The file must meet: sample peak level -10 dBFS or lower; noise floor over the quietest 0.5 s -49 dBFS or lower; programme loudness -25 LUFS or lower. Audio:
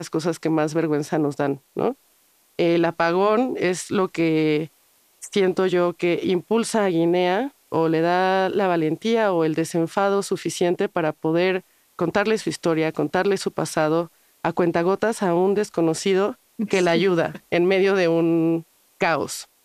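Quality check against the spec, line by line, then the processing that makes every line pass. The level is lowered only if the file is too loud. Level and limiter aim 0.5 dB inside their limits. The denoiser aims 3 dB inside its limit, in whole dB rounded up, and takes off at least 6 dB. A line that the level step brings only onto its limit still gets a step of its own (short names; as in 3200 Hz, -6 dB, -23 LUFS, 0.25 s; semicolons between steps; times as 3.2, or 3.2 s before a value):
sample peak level -6.5 dBFS: fail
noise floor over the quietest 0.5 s -60 dBFS: OK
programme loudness -21.5 LUFS: fail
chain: gain -4 dB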